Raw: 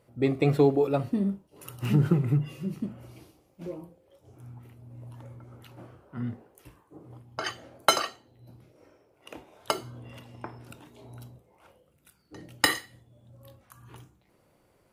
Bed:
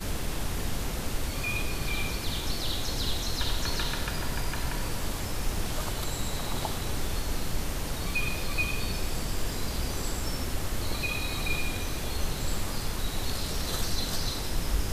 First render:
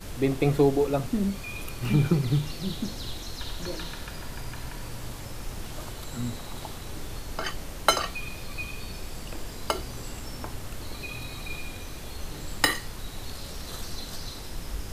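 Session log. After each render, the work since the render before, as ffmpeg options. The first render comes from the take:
-filter_complex "[1:a]volume=0.473[s0];[0:a][s0]amix=inputs=2:normalize=0"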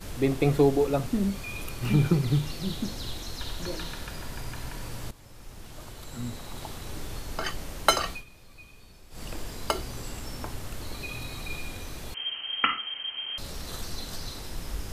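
-filter_complex "[0:a]asettb=1/sr,asplit=3[s0][s1][s2];[s0]atrim=end=12.144[s3];[s1]atrim=start=12.14:end=13.38,asetpts=PTS-STARTPTS,afade=t=in:d=0.004:c=qsin,afade=t=out:st=1.236:d=0.004:c=qsin,lowpass=f=2700:t=q:w=0.5098,lowpass=f=2700:t=q:w=0.6013,lowpass=f=2700:t=q:w=0.9,lowpass=f=2700:t=q:w=2.563,afreqshift=-3200[s4];[s2]atrim=start=13.376[s5];[s3][s4]acrossfade=d=0.004:c1=hsin:c2=qsin[s6];[s6][s5]acrossfade=d=0.004:c1=qsin:c2=hsin,asplit=4[s7][s8][s9][s10];[s7]atrim=end=5.11,asetpts=PTS-STARTPTS,afade=t=out:st=5.106:d=0.004:c=hsin:silence=0.177828[s11];[s8]atrim=start=5.11:end=8.24,asetpts=PTS-STARTPTS,afade=t=in:d=1.8:silence=0.177828,afade=t=out:st=3:d=0.13:silence=0.177828[s12];[s9]atrim=start=8.24:end=9.1,asetpts=PTS-STARTPTS,volume=0.178[s13];[s10]atrim=start=9.1,asetpts=PTS-STARTPTS,afade=t=in:d=0.13:silence=0.177828[s14];[s11][s12][s13][s14]concat=n=4:v=0:a=1"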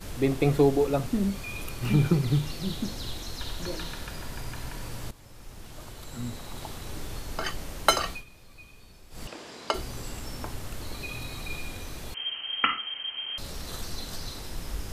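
-filter_complex "[0:a]asettb=1/sr,asplit=3[s0][s1][s2];[s0]atrim=end=9.274[s3];[s1]atrim=start=9.27:end=9.74,asetpts=PTS-STARTPTS,afade=t=in:d=0.004:c=qsin,afade=t=out:st=0.466:d=0.004:c=qsin,highpass=270,lowpass=6100[s4];[s2]atrim=start=9.736[s5];[s3][s4]acrossfade=d=0.004:c1=hsin:c2=qsin[s6];[s6][s5]acrossfade=d=0.004:c1=qsin:c2=hsin"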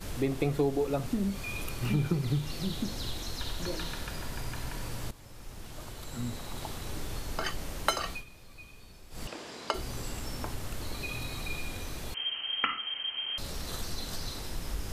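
-af "acompressor=threshold=0.0355:ratio=2"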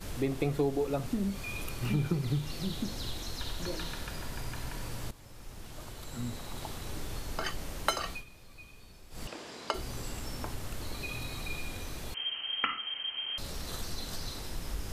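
-af "volume=0.841"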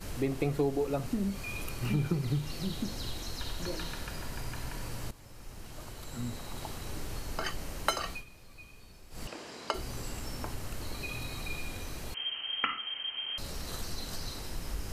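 -af "bandreject=f=3500:w=14"

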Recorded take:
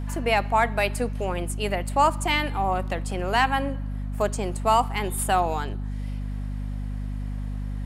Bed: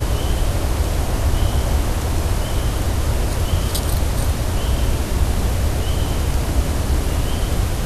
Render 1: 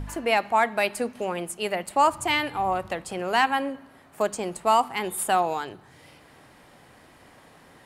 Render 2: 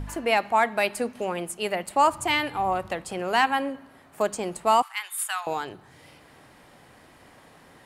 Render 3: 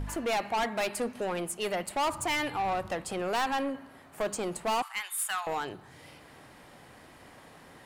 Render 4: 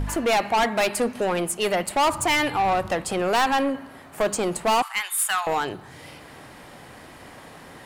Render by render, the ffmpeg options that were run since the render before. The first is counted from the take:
-af "bandreject=f=50:t=h:w=4,bandreject=f=100:t=h:w=4,bandreject=f=150:t=h:w=4,bandreject=f=200:t=h:w=4,bandreject=f=250:t=h:w=4"
-filter_complex "[0:a]asettb=1/sr,asplit=3[s0][s1][s2];[s0]atrim=end=4.824[s3];[s1]atrim=start=4.82:end=5.47,asetpts=PTS-STARTPTS,afade=t=in:d=0.004:c=qsin,afade=t=out:st=0.646:d=0.004:c=qsin,highpass=f=1200:w=0.5412,highpass=f=1200:w=1.3066[s4];[s2]atrim=start=5.466[s5];[s3][s4]acrossfade=d=0.004:c1=hsin:c2=qsin[s6];[s6][s5]acrossfade=d=0.004:c1=qsin:c2=hsin"
-af "asoftclip=type=tanh:threshold=0.0531"
-af "volume=2.66"

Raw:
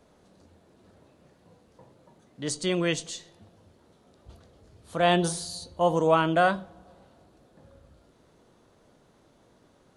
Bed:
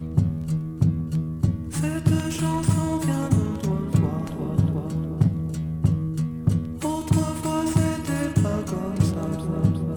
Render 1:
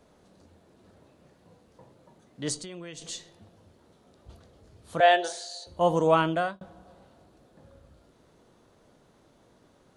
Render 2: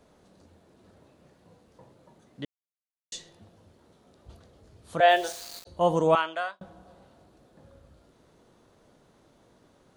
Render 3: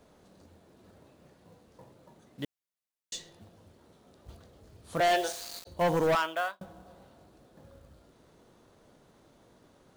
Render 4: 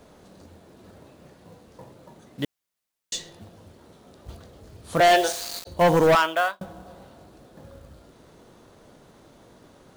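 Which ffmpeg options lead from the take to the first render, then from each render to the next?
-filter_complex "[0:a]asettb=1/sr,asplit=3[s0][s1][s2];[s0]atrim=end=2.564[s3];[s1]atrim=start=2.56:end=3.02,asetpts=PTS-STARTPTS,afade=t=in:d=0.004:c=qsin,afade=t=out:st=0.456:d=0.004:c=qsin,acompressor=threshold=0.0141:ratio=10:attack=3.2:release=140:knee=1:detection=peak[s4];[s2]atrim=start=3.016[s5];[s3][s4]acrossfade=d=0.004:c1=hsin:c2=qsin[s6];[s6][s5]acrossfade=d=0.004:c1=qsin:c2=hsin,asettb=1/sr,asplit=3[s7][s8][s9];[s7]atrim=end=5.004[s10];[s8]atrim=start=5:end=5.67,asetpts=PTS-STARTPTS,afade=t=in:d=0.004:c=qsin,afade=t=out:st=0.666:d=0.004:c=qsin,highpass=f=440:w=0.5412,highpass=f=440:w=1.3066,equalizer=f=660:t=q:w=4:g=7,equalizer=f=1100:t=q:w=4:g=-10,equalizer=f=1700:t=q:w=4:g=7,equalizer=f=5100:t=q:w=4:g=-4,lowpass=f=7300:w=0.5412,lowpass=f=7300:w=1.3066[s11];[s9]atrim=start=5.666[s12];[s10][s11]acrossfade=d=0.004:c1=hsin:c2=qsin[s13];[s13][s12]acrossfade=d=0.004:c1=qsin:c2=hsin,asplit=2[s14][s15];[s14]atrim=end=6.61,asetpts=PTS-STARTPTS,afade=t=out:st=6.21:d=0.4[s16];[s15]atrim=start=6.61,asetpts=PTS-STARTPTS,afade=t=in:d=0.004:c=hsin[s17];[s16][s17]concat=n=2:v=0:a=1"
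-filter_complex "[0:a]asplit=3[s0][s1][s2];[s0]afade=t=out:st=5.08:d=0.02[s3];[s1]aeval=exprs='val(0)*gte(abs(val(0)),0.0126)':c=same,afade=t=in:st=5.08:d=0.02,afade=t=out:st=5.65:d=0.02[s4];[s2]afade=t=in:st=5.65:d=0.02[s5];[s3][s4][s5]amix=inputs=3:normalize=0,asettb=1/sr,asplit=3[s6][s7][s8];[s6]atrim=end=6.154[s9];[s7]atrim=start=6.15:end=6.6,asetpts=PTS-STARTPTS,afade=t=in:d=0.004:c=qsin,afade=t=out:st=0.446:d=0.004:c=qsin,highpass=790,lowpass=7700[s10];[s8]atrim=start=6.596[s11];[s9][s10]acrossfade=d=0.004:c1=hsin:c2=qsin[s12];[s12][s11]acrossfade=d=0.004:c1=qsin:c2=hsin,asplit=3[s13][s14][s15];[s13]atrim=end=2.45,asetpts=PTS-STARTPTS,afade=t=out:st=2.446:d=0.004:c=hsin[s16];[s14]atrim=start=2.45:end=3.12,asetpts=PTS-STARTPTS,volume=0[s17];[s15]atrim=start=3.12,asetpts=PTS-STARTPTS,afade=t=in:d=0.004:c=hsin[s18];[s16][s17][s18]concat=n=3:v=0:a=1"
-af "acrusher=bits=5:mode=log:mix=0:aa=0.000001,asoftclip=type=hard:threshold=0.0794"
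-af "volume=2.66"

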